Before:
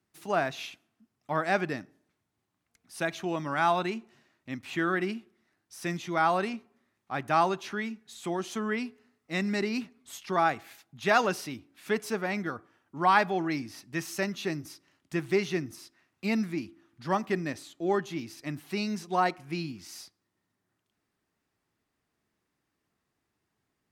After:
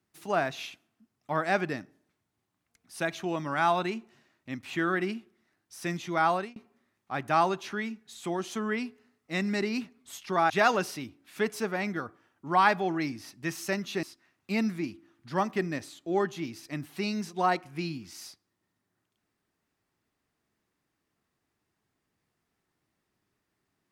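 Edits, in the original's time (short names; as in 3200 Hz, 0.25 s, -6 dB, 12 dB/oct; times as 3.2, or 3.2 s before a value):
6.31–6.56 fade out
10.5–11 cut
14.53–15.77 cut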